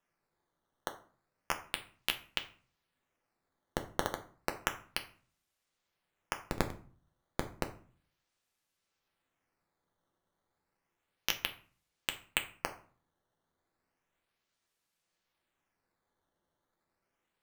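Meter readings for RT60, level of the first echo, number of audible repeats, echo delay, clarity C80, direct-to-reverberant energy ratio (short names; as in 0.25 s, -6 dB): 0.45 s, none, none, none, 17.5 dB, 5.0 dB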